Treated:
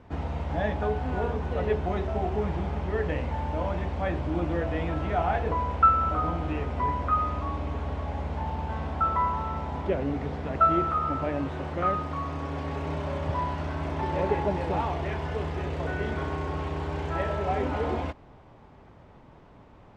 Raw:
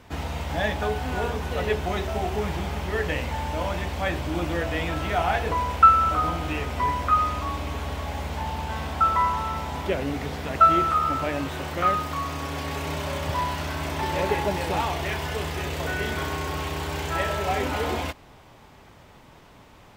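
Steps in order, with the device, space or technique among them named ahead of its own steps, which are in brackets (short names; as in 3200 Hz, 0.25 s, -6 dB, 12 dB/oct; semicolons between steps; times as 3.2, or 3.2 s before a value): through cloth (LPF 7000 Hz 12 dB/oct; high shelf 2000 Hz -16.5 dB)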